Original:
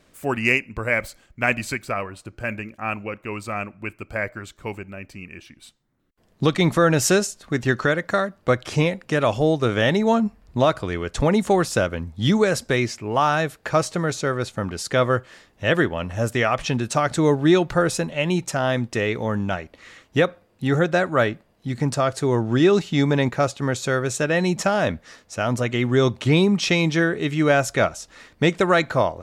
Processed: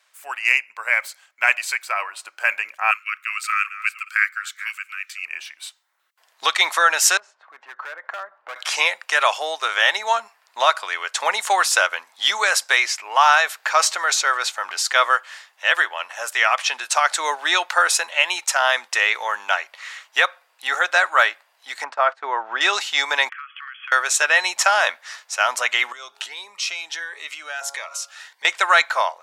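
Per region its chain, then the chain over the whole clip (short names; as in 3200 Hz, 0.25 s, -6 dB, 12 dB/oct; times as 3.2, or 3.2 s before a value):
2.91–5.25 reverse delay 0.379 s, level -14 dB + Chebyshev band-stop 140–1200 Hz, order 5
7.17–8.56 LPF 1200 Hz + hard clip -16.5 dBFS + compressor, threshold -33 dBFS
12.99–14.95 bell 9900 Hz -5.5 dB 0.26 oct + transient shaper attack -2 dB, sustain +3 dB
21.84–22.61 LPF 1700 Hz + gate -32 dBFS, range -17 dB
23.29–23.92 brick-wall FIR band-pass 1100–3400 Hz + compressor 12:1, threshold -41 dBFS
25.92–28.45 de-hum 139.3 Hz, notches 10 + compressor 4:1, threshold -33 dBFS + cascading phaser rising 1.5 Hz
whole clip: HPF 880 Hz 24 dB/oct; notch 1200 Hz, Q 24; AGC gain up to 11.5 dB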